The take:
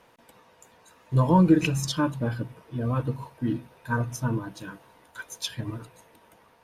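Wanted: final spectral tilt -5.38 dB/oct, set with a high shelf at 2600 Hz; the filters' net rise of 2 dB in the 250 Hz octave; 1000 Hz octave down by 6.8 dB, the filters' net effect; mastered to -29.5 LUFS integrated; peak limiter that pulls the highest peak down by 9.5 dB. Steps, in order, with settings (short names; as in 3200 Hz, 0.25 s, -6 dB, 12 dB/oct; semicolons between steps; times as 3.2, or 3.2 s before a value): bell 250 Hz +3.5 dB; bell 1000 Hz -8.5 dB; high shelf 2600 Hz +6.5 dB; gain -1.5 dB; limiter -17 dBFS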